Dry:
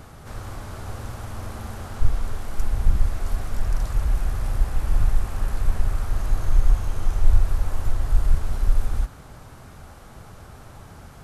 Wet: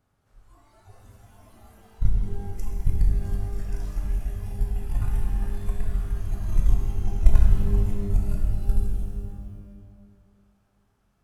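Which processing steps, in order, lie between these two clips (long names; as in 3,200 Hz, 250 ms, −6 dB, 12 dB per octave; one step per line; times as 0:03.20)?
noise reduction from a noise print of the clip's start 17 dB
harmonic generator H 3 −10 dB, 5 −23 dB, 7 −31 dB, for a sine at −3.5 dBFS
reverb with rising layers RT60 1.8 s, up +12 semitones, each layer −8 dB, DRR 0.5 dB
level +1 dB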